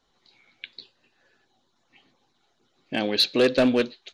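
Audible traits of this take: noise floor -70 dBFS; spectral tilt -2.5 dB/oct

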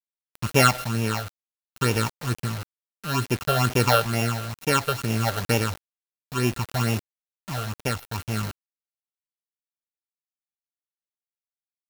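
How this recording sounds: a buzz of ramps at a fixed pitch in blocks of 32 samples; phasing stages 8, 2.2 Hz, lowest notch 270–1300 Hz; a quantiser's noise floor 6-bit, dither none; tremolo triangle 0.6 Hz, depth 50%

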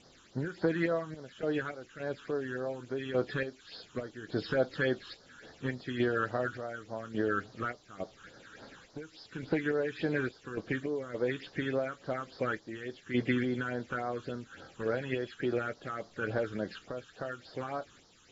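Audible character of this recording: random-step tremolo, depth 85%; a quantiser's noise floor 10-bit, dither triangular; phasing stages 8, 3.5 Hz, lowest notch 600–2600 Hz; AAC

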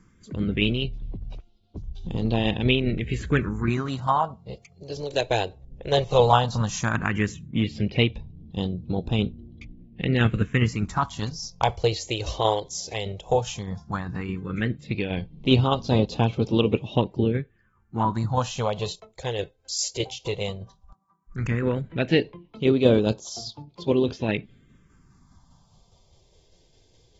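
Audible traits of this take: phasing stages 4, 0.14 Hz, lowest notch 210–1800 Hz; tremolo saw down 4.9 Hz, depth 40%; AAC

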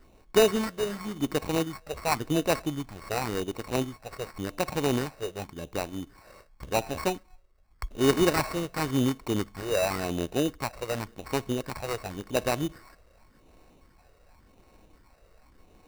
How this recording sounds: a buzz of ramps at a fixed pitch in blocks of 8 samples; phasing stages 8, 0.9 Hz, lowest notch 250–2700 Hz; aliases and images of a low sample rate 3300 Hz, jitter 0%

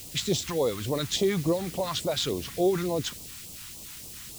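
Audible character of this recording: a quantiser's noise floor 8-bit, dither triangular; phasing stages 2, 3.5 Hz, lowest notch 480–1600 Hz

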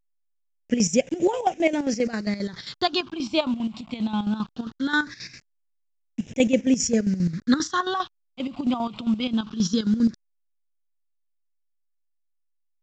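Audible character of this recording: a quantiser's noise floor 8-bit, dither none; phasing stages 6, 0.2 Hz, lowest notch 450–1200 Hz; chopped level 7.5 Hz, depth 65%, duty 55%; A-law

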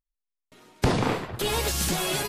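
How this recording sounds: noise floor -85 dBFS; spectral tilt -4.0 dB/oct

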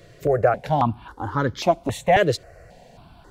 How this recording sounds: notches that jump at a steady rate 3.7 Hz 230–2700 Hz

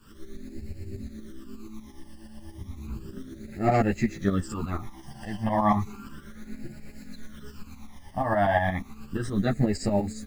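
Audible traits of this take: a quantiser's noise floor 10-bit, dither none; phasing stages 12, 0.33 Hz, lowest notch 400–1100 Hz; tremolo saw up 8.4 Hz, depth 70%; a shimmering, thickened sound

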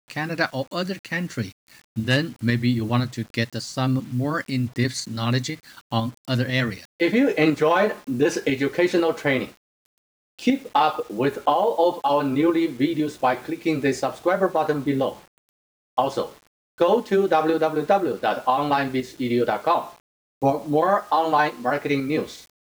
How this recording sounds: tremolo saw up 2 Hz, depth 40%; a quantiser's noise floor 8-bit, dither none

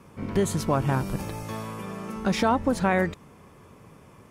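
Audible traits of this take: noise floor -52 dBFS; spectral tilt -5.5 dB/oct

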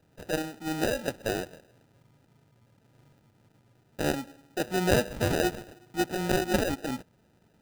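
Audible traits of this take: aliases and images of a low sample rate 1100 Hz, jitter 0%

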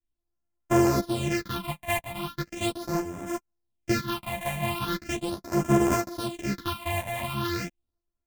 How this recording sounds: a buzz of ramps at a fixed pitch in blocks of 128 samples; phasing stages 6, 0.39 Hz, lowest notch 350–4100 Hz; tremolo saw up 1 Hz, depth 50%; a shimmering, thickened sound

